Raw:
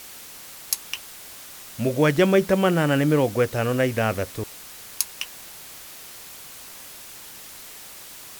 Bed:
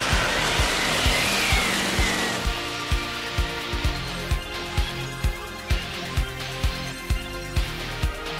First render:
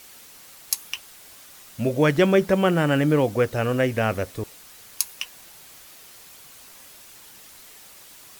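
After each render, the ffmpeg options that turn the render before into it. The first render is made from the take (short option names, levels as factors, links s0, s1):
-af "afftdn=nr=6:nf=-42"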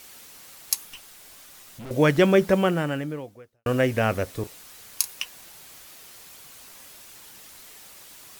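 -filter_complex "[0:a]asettb=1/sr,asplit=3[s0][s1][s2];[s0]atrim=end=0.854[s3];[s1]atrim=start=0.85:end=1.91,asetpts=PTS-STARTPTS,afade=t=in:d=0.004:c=qsin,afade=t=out:st=1.056:d=0.004:c=qsin,aeval=exprs='(tanh(70.8*val(0)+0.3)-tanh(0.3))/70.8':c=same[s4];[s2]atrim=start=1.906[s5];[s3][s4]acrossfade=d=0.004:c1=hsin:c2=qsin[s6];[s6][s5]acrossfade=d=0.004:c1=qsin:c2=hsin,asettb=1/sr,asplit=3[s7][s8][s9];[s7]atrim=end=4.304[s10];[s8]atrim=start=4.3:end=5.19,asetpts=PTS-STARTPTS,afade=t=in:d=0.004:c=qsin,afade=t=out:st=0.886:d=0.004:c=qsin,asplit=2[s11][s12];[s12]adelay=34,volume=0.211[s13];[s11][s13]amix=inputs=2:normalize=0,atrim=end_sample=39249[s14];[s9]atrim=start=5.186[s15];[s10][s14]acrossfade=d=0.004:c1=hsin:c2=qsin[s16];[s16][s15]acrossfade=d=0.004:c1=qsin:c2=hsin,asplit=2[s17][s18];[s17]atrim=end=3.66,asetpts=PTS-STARTPTS,afade=t=out:st=2.54:d=1.12:c=qua[s19];[s18]atrim=start=3.66,asetpts=PTS-STARTPTS,afade=t=in:d=0.004:c=hsin[s20];[s19][s20]concat=n=2:v=0:a=1"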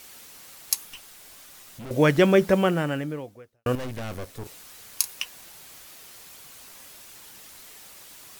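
-filter_complex "[0:a]asettb=1/sr,asplit=3[s0][s1][s2];[s0]atrim=end=3.754[s3];[s1]atrim=start=3.75:end=4.46,asetpts=PTS-STARTPTS,afade=t=in:d=0.004:c=qsin,afade=t=out:st=0.706:d=0.004:c=qsin,aeval=exprs='(tanh(39.8*val(0)+0.75)-tanh(0.75))/39.8':c=same[s4];[s2]atrim=start=4.456[s5];[s3][s4]acrossfade=d=0.004:c1=hsin:c2=qsin[s6];[s6][s5]acrossfade=d=0.004:c1=qsin:c2=hsin"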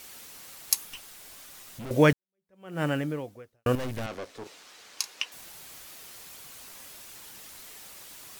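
-filter_complex "[0:a]asettb=1/sr,asplit=3[s0][s1][s2];[s0]atrim=end=4.064[s3];[s1]atrim=start=4.06:end=5.32,asetpts=PTS-STARTPTS,afade=t=in:d=0.004:c=qsin,afade=t=out:st=1.256:d=0.004:c=qsin,acrossover=split=230 7000:gain=0.141 1 0.126[s4][s5][s6];[s4][s5][s6]amix=inputs=3:normalize=0[s7];[s2]atrim=start=5.316[s8];[s3][s7]acrossfade=d=0.004:c1=hsin:c2=qsin[s9];[s9][s8]acrossfade=d=0.004:c1=qsin:c2=hsin,asplit=2[s10][s11];[s10]atrim=end=2.13,asetpts=PTS-STARTPTS,afade=t=out:st=2.126:d=0.004:c=hsin[s12];[s11]atrim=start=2.13,asetpts=PTS-STARTPTS,afade=t=in:d=0.7:c=exp[s13];[s12][s13]concat=n=2:v=0:a=1"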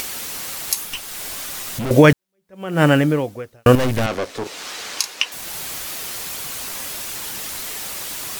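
-af "acompressor=mode=upward:threshold=0.0141:ratio=2.5,alimiter=level_in=5.01:limit=0.891:release=50:level=0:latency=1"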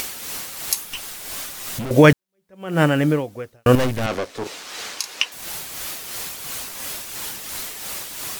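-af "tremolo=f=2.9:d=0.46"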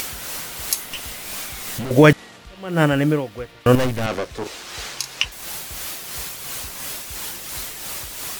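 -filter_complex "[1:a]volume=0.133[s0];[0:a][s0]amix=inputs=2:normalize=0"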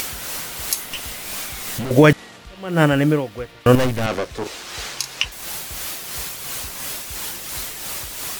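-af "volume=1.19,alimiter=limit=0.794:level=0:latency=1"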